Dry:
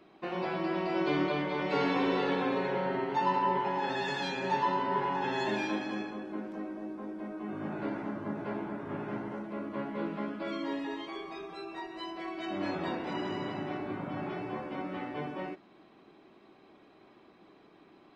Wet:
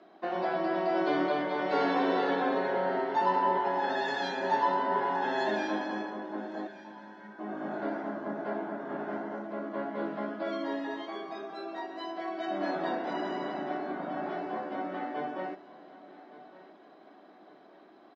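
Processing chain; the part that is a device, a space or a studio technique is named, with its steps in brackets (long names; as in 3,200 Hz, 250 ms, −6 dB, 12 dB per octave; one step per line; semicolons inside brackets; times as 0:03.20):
0:06.67–0:07.39: Chebyshev band-stop filter 200–1,400 Hz, order 5
television speaker (loudspeaker in its box 200–6,600 Hz, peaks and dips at 680 Hz +10 dB, 1,600 Hz +5 dB, 2,500 Hz −8 dB)
repeating echo 1,165 ms, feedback 41%, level −18 dB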